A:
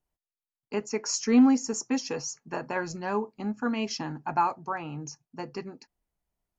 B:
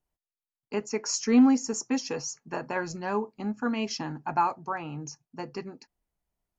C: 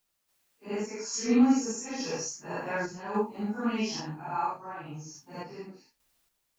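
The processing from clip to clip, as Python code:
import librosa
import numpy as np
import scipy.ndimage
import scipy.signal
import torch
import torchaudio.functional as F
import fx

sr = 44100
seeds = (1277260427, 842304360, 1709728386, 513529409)

y1 = x
y2 = fx.phase_scramble(y1, sr, seeds[0], window_ms=200)
y2 = fx.quant_dither(y2, sr, seeds[1], bits=12, dither='triangular')
y2 = fx.tremolo_random(y2, sr, seeds[2], hz=3.5, depth_pct=55)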